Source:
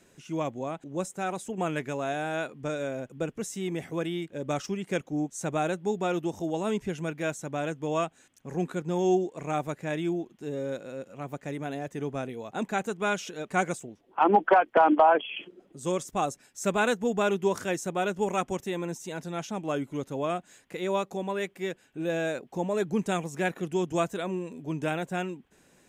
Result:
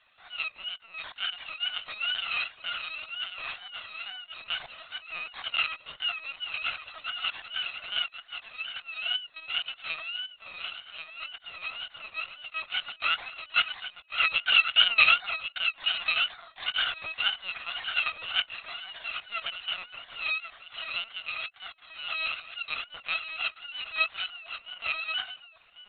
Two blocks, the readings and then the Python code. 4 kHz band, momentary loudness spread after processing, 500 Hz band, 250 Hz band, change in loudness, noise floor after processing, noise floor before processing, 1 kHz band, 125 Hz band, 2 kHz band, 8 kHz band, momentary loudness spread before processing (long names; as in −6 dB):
+16.0 dB, 13 LU, −24.0 dB, below −30 dB, +0.5 dB, −58 dBFS, −62 dBFS, −9.5 dB, below −25 dB, +6.5 dB, below −40 dB, 10 LU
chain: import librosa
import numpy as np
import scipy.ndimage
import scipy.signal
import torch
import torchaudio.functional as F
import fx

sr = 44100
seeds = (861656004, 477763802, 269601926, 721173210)

p1 = fx.bit_reversed(x, sr, seeds[0], block=256)
p2 = scipy.signal.sosfilt(scipy.signal.butter(2, 740.0, 'highpass', fs=sr, output='sos'), p1)
p3 = fx.wow_flutter(p2, sr, seeds[1], rate_hz=2.1, depth_cents=140.0)
p4 = p3 + fx.echo_single(p3, sr, ms=1089, db=-8.0, dry=0)
p5 = fx.lpc_vocoder(p4, sr, seeds[2], excitation='pitch_kept', order=16)
y = p5 * 10.0 ** (6.5 / 20.0)